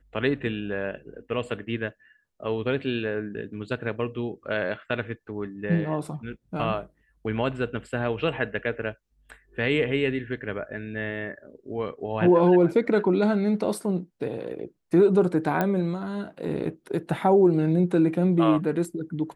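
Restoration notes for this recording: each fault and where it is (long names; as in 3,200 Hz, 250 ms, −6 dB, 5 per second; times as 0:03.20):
0:15.61: click −12 dBFS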